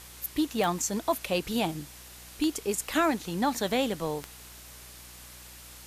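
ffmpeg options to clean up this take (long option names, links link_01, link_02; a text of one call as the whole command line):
ffmpeg -i in.wav -af "adeclick=threshold=4,bandreject=frequency=60.9:width_type=h:width=4,bandreject=frequency=121.8:width_type=h:width=4,bandreject=frequency=182.7:width_type=h:width=4,bandreject=frequency=243.6:width_type=h:width=4,bandreject=frequency=304.5:width_type=h:width=4,bandreject=frequency=365.4:width_type=h:width=4,afwtdn=0.0045" out.wav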